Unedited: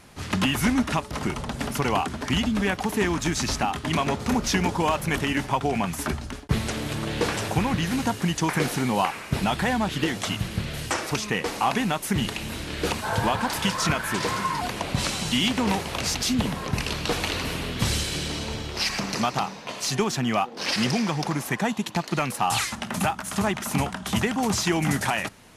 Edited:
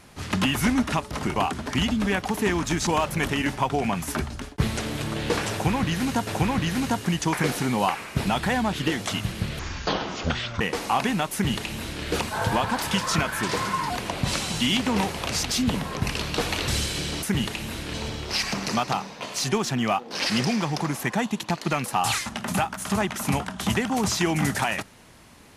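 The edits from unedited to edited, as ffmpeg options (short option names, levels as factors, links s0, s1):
-filter_complex "[0:a]asplit=9[s0][s1][s2][s3][s4][s5][s6][s7][s8];[s0]atrim=end=1.362[s9];[s1]atrim=start=1.908:end=3.422[s10];[s2]atrim=start=4.778:end=8.182[s11];[s3]atrim=start=7.428:end=10.754[s12];[s4]atrim=start=10.75:end=11.32,asetpts=PTS-STARTPTS,asetrate=24696,aresample=44100,atrim=end_sample=44887,asetpts=PTS-STARTPTS[s13];[s5]atrim=start=11.316:end=17.392[s14];[s6]atrim=start=17.848:end=18.402[s15];[s7]atrim=start=12.038:end=12.752[s16];[s8]atrim=start=18.398[s17];[s9][s10]acrossfade=d=0.004:c1=hsin:c2=hsin[s18];[s18][s11]acrossfade=d=0.004:c1=hsin:c2=hsin[s19];[s19][s12]acrossfade=d=0.004:c1=hsin:c2=hsin[s20];[s20][s13]acrossfade=d=0.004:c1=hsin:c2=hsin[s21];[s21][s14]acrossfade=d=0.004:c1=hsin:c2=hsin[s22];[s22][s15]acrossfade=d=0.004:c1=hsin:c2=hsin[s23];[s23][s16]acrossfade=d=0.004:c1=hsin:c2=hsin[s24];[s24][s17]acrossfade=d=0.004:c1=hsin:c2=hsin"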